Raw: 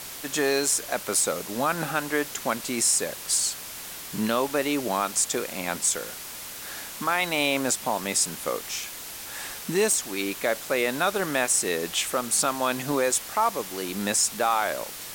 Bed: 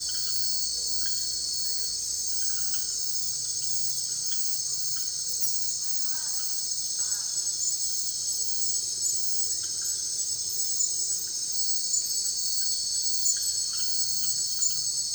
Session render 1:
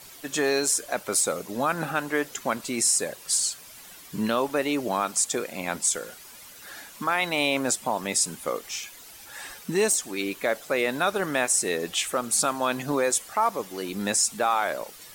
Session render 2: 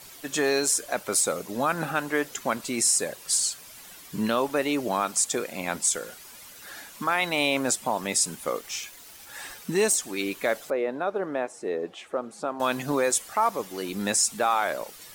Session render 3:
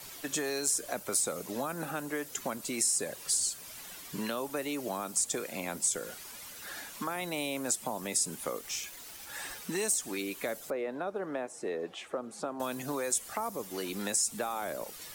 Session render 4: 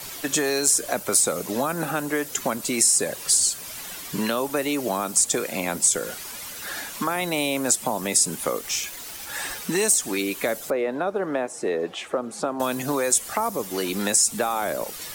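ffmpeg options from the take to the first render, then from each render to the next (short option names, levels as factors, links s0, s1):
-af "afftdn=nr=11:nf=-39"
-filter_complex "[0:a]asettb=1/sr,asplit=3[s0][s1][s2];[s0]atrim=end=8.334[s3];[s1]atrim=start=8.33:end=9.59,asetpts=PTS-STARTPTS,afade=t=in:d=0.004:c=qsin,afade=t=out:st=1.256:d=0.004:c=qsin,aeval=exprs='val(0)*gte(abs(val(0)),0.00473)':c=same[s4];[s2]atrim=start=9.586[s5];[s3][s4]acrossfade=d=0.004:c1=hsin:c2=qsin[s6];[s6][s5]acrossfade=d=0.004:c1=qsin:c2=hsin,asettb=1/sr,asplit=3[s7][s8][s9];[s7]atrim=end=10.704[s10];[s8]atrim=start=10.7:end=12.6,asetpts=PTS-STARTPTS,afade=t=in:d=0.004:c=qsin,afade=t=out:st=1.896:d=0.004:c=qsin,bandpass=f=470:t=q:w=0.91[s11];[s9]atrim=start=12.596[s12];[s10][s11]acrossfade=d=0.004:c1=hsin:c2=qsin[s13];[s13][s12]acrossfade=d=0.004:c1=qsin:c2=hsin"
-filter_complex "[0:a]acrossover=split=260|580|6400[s0][s1][s2][s3];[s0]acompressor=threshold=0.00562:ratio=4[s4];[s1]acompressor=threshold=0.0112:ratio=4[s5];[s2]acompressor=threshold=0.0112:ratio=4[s6];[s3]acompressor=threshold=0.0398:ratio=4[s7];[s4][s5][s6][s7]amix=inputs=4:normalize=0"
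-af "volume=3.16"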